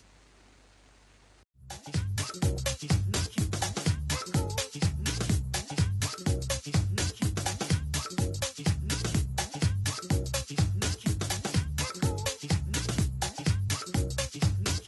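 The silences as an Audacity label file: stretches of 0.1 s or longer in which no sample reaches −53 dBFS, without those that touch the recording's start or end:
1.430000	1.590000	silence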